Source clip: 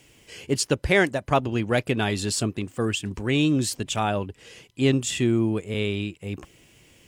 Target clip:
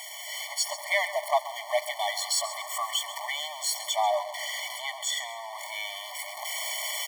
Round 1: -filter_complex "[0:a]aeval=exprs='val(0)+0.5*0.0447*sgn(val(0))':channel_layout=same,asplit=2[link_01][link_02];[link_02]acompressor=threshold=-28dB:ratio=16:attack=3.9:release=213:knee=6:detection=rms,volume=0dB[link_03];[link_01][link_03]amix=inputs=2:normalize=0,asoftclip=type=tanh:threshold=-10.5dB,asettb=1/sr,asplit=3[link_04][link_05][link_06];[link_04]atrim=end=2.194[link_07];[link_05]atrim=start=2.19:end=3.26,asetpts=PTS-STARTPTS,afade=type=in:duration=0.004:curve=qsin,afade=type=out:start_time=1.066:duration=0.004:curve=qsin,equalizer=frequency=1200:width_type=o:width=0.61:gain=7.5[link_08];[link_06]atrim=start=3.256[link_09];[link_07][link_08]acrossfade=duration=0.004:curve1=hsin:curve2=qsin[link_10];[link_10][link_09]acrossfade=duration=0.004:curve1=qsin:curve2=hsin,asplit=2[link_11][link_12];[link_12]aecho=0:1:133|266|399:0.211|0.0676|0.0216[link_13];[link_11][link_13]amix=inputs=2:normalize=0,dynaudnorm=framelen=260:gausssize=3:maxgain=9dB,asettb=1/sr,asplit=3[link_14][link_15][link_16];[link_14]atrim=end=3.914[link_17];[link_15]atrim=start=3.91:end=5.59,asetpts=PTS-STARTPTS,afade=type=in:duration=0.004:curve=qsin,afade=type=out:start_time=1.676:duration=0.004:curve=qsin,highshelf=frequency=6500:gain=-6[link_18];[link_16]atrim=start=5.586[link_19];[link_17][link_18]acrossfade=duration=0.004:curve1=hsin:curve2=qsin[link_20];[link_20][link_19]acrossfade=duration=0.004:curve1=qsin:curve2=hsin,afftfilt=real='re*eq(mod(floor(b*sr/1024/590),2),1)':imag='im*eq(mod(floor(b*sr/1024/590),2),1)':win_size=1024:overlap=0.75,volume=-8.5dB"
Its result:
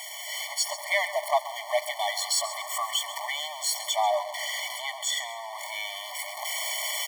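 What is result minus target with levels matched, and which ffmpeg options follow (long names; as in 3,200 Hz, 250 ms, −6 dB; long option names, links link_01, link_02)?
downward compressor: peak gain reduction −8 dB
-filter_complex "[0:a]aeval=exprs='val(0)+0.5*0.0447*sgn(val(0))':channel_layout=same,asplit=2[link_01][link_02];[link_02]acompressor=threshold=-36.5dB:ratio=16:attack=3.9:release=213:knee=6:detection=rms,volume=0dB[link_03];[link_01][link_03]amix=inputs=2:normalize=0,asoftclip=type=tanh:threshold=-10.5dB,asettb=1/sr,asplit=3[link_04][link_05][link_06];[link_04]atrim=end=2.194[link_07];[link_05]atrim=start=2.19:end=3.26,asetpts=PTS-STARTPTS,afade=type=in:duration=0.004:curve=qsin,afade=type=out:start_time=1.066:duration=0.004:curve=qsin,equalizer=frequency=1200:width_type=o:width=0.61:gain=7.5[link_08];[link_06]atrim=start=3.256[link_09];[link_07][link_08]acrossfade=duration=0.004:curve1=hsin:curve2=qsin[link_10];[link_10][link_09]acrossfade=duration=0.004:curve1=qsin:curve2=hsin,asplit=2[link_11][link_12];[link_12]aecho=0:1:133|266|399:0.211|0.0676|0.0216[link_13];[link_11][link_13]amix=inputs=2:normalize=0,dynaudnorm=framelen=260:gausssize=3:maxgain=9dB,asettb=1/sr,asplit=3[link_14][link_15][link_16];[link_14]atrim=end=3.914[link_17];[link_15]atrim=start=3.91:end=5.59,asetpts=PTS-STARTPTS,afade=type=in:duration=0.004:curve=qsin,afade=type=out:start_time=1.676:duration=0.004:curve=qsin,highshelf=frequency=6500:gain=-6[link_18];[link_16]atrim=start=5.586[link_19];[link_17][link_18]acrossfade=duration=0.004:curve1=hsin:curve2=qsin[link_20];[link_20][link_19]acrossfade=duration=0.004:curve1=qsin:curve2=hsin,afftfilt=real='re*eq(mod(floor(b*sr/1024/590),2),1)':imag='im*eq(mod(floor(b*sr/1024/590),2),1)':win_size=1024:overlap=0.75,volume=-8.5dB"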